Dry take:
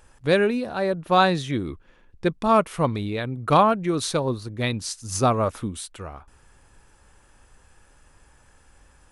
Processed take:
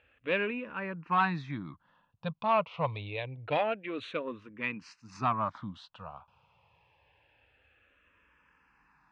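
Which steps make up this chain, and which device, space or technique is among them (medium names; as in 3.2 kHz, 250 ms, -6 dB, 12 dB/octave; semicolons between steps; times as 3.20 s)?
barber-pole phaser into a guitar amplifier (barber-pole phaser -0.26 Hz; saturation -14 dBFS, distortion -17 dB; cabinet simulation 110–3700 Hz, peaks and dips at 240 Hz -5 dB, 370 Hz -10 dB, 1 kHz +6 dB, 2.6 kHz +9 dB); trim -5.5 dB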